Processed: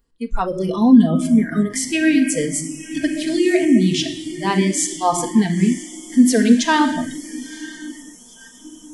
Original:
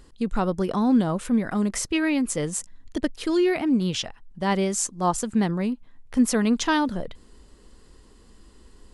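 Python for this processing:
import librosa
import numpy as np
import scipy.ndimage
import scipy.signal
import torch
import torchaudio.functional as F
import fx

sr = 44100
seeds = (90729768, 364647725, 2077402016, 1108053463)

y = fx.echo_diffused(x, sr, ms=984, feedback_pct=62, wet_db=-12.0)
y = fx.room_shoebox(y, sr, seeds[0], volume_m3=2800.0, walls='mixed', distance_m=1.7)
y = fx.noise_reduce_blind(y, sr, reduce_db=23)
y = y * 10.0 ** (4.5 / 20.0)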